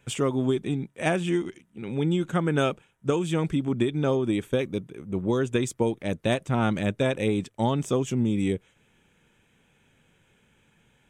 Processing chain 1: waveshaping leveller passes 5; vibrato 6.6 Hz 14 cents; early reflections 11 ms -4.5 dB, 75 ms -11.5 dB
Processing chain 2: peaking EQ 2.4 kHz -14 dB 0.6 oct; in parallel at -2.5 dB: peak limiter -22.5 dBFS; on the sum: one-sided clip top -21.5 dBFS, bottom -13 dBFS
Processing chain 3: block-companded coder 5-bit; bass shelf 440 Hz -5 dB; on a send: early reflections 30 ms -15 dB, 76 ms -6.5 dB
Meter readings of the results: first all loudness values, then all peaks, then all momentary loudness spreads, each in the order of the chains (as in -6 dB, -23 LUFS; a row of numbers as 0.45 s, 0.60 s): -14.5 LUFS, -25.0 LUFS, -28.5 LUFS; -6.0 dBFS, -13.0 dBFS, -12.0 dBFS; 4 LU, 5 LU, 7 LU